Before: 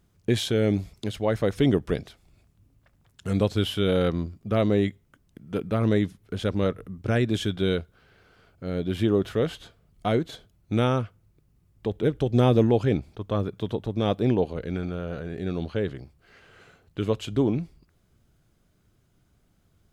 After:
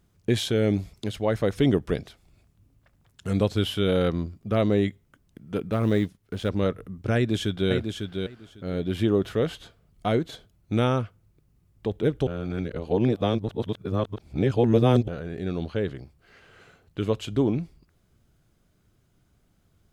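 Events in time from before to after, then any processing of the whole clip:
0:05.72–0:06.49: mu-law and A-law mismatch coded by A
0:07.15–0:07.71: delay throw 550 ms, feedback 15%, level −5.5 dB
0:12.27–0:15.08: reverse

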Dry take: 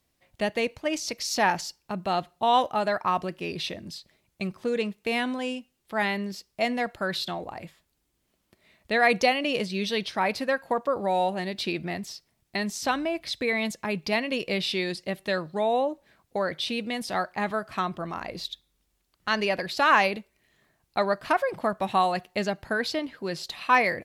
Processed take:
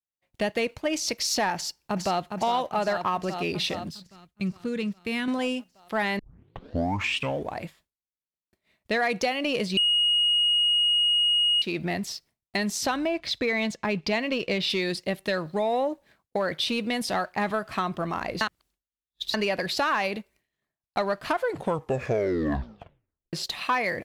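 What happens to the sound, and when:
0:01.55–0:02.29: delay throw 410 ms, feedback 70%, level −6.5 dB
0:03.89–0:05.28: drawn EQ curve 180 Hz 0 dB, 420 Hz −9 dB, 730 Hz −16 dB, 1,300 Hz −7 dB
0:06.19: tape start 1.42 s
0:09.77–0:11.62: beep over 2,880 Hz −13.5 dBFS
0:13.06–0:14.70: low-pass filter 5,700 Hz
0:18.41–0:19.34: reverse
0:21.30: tape stop 2.03 s
whole clip: downward expander −54 dBFS; downward compressor 4 to 1, threshold −27 dBFS; leveller curve on the samples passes 1; level +1 dB

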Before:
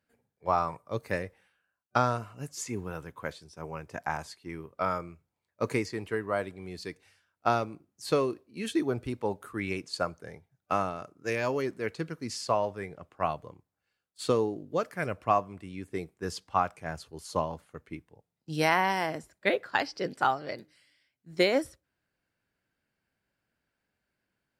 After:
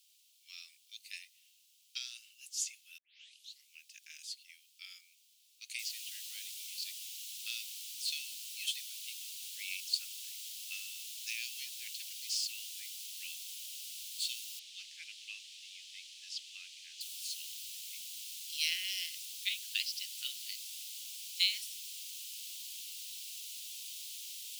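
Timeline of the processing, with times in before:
0:02.98: tape start 0.71 s
0:05.79: noise floor change −68 dB −46 dB
0:14.59–0:17.01: high-frequency loss of the air 99 metres
whole clip: Butterworth high-pass 2,800 Hz 48 dB per octave; spectral tilt −3 dB per octave; level +10.5 dB

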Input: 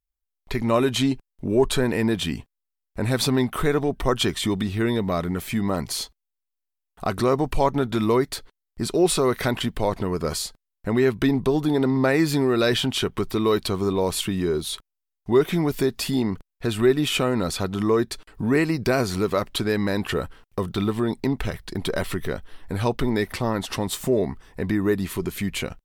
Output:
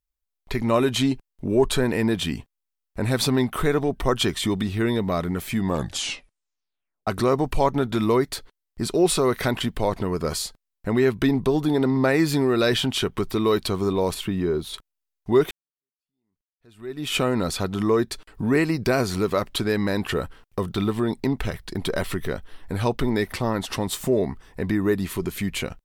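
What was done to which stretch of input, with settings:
0:05.59: tape stop 1.48 s
0:14.14–0:14.74: parametric band 8,100 Hz −10 dB 2.3 octaves
0:15.51–0:17.15: fade in exponential

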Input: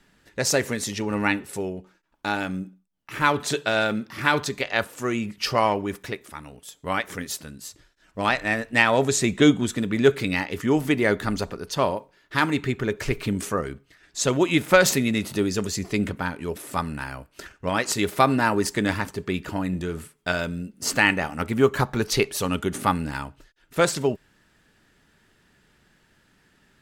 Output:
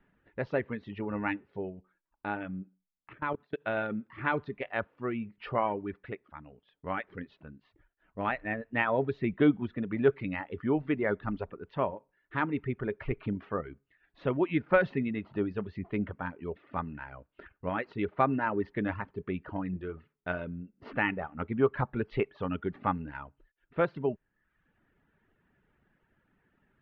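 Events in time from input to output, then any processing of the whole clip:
0:03.13–0:03.61: output level in coarse steps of 23 dB
whole clip: Bessel low-pass filter 1,700 Hz, order 8; reverb reduction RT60 0.73 s; level −6.5 dB

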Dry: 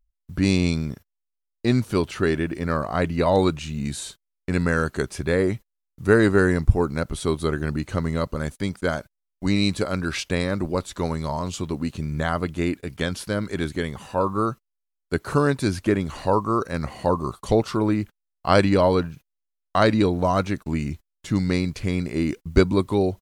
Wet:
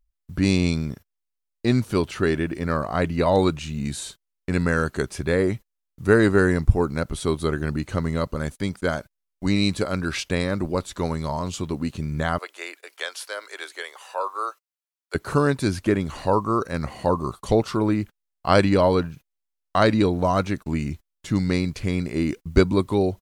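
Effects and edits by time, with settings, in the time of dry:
0:12.38–0:15.15: Bessel high-pass filter 780 Hz, order 8

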